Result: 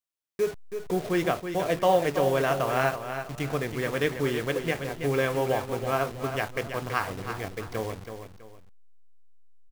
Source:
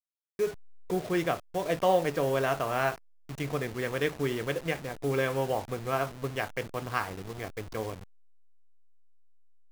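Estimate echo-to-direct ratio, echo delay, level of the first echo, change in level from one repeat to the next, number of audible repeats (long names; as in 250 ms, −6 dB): −8.0 dB, 327 ms, −8.5 dB, −9.5 dB, 2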